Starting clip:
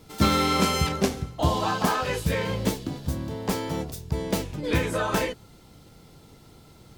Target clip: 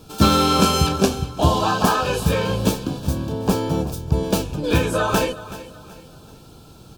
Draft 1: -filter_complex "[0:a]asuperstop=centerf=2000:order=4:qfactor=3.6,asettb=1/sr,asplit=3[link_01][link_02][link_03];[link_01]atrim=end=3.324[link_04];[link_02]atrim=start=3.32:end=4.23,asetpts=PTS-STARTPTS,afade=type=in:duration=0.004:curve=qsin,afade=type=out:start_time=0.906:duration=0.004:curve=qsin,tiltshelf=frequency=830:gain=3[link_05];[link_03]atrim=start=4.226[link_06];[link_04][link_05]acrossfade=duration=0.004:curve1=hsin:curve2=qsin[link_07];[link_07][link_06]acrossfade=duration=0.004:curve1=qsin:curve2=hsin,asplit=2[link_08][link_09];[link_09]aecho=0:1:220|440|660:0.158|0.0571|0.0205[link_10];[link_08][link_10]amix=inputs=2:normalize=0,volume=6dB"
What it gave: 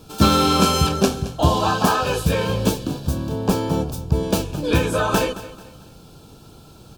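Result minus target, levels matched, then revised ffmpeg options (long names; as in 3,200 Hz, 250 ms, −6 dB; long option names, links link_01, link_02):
echo 156 ms early
-filter_complex "[0:a]asuperstop=centerf=2000:order=4:qfactor=3.6,asettb=1/sr,asplit=3[link_01][link_02][link_03];[link_01]atrim=end=3.324[link_04];[link_02]atrim=start=3.32:end=4.23,asetpts=PTS-STARTPTS,afade=type=in:duration=0.004:curve=qsin,afade=type=out:start_time=0.906:duration=0.004:curve=qsin,tiltshelf=frequency=830:gain=3[link_05];[link_03]atrim=start=4.226[link_06];[link_04][link_05]acrossfade=duration=0.004:curve1=hsin:curve2=qsin[link_07];[link_07][link_06]acrossfade=duration=0.004:curve1=qsin:curve2=hsin,asplit=2[link_08][link_09];[link_09]aecho=0:1:376|752|1128:0.158|0.0571|0.0205[link_10];[link_08][link_10]amix=inputs=2:normalize=0,volume=6dB"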